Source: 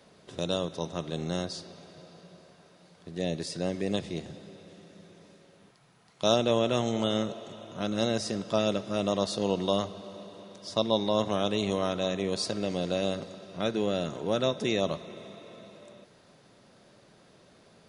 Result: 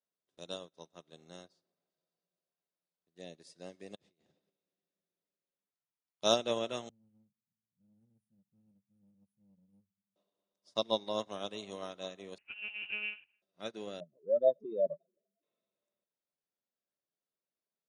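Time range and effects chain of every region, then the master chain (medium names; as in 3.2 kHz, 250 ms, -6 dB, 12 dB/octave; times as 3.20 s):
1.48–1.90 s: jump at every zero crossing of -50.5 dBFS + treble shelf 3.2 kHz -10 dB
3.95–4.50 s: compressor with a negative ratio -40 dBFS + distance through air 52 m
6.89–10.16 s: inverse Chebyshev band-stop 370–7500 Hz + waveshaping leveller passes 1
12.38–13.42 s: frequency inversion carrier 3 kHz + monotone LPC vocoder at 8 kHz 210 Hz
14.00–15.43 s: spectral contrast enhancement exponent 3.6 + dynamic bell 680 Hz, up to +6 dB, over -42 dBFS, Q 1.8
whole clip: high-pass 280 Hz 6 dB/octave; treble shelf 5.4 kHz +4.5 dB; upward expansion 2.5:1, over -48 dBFS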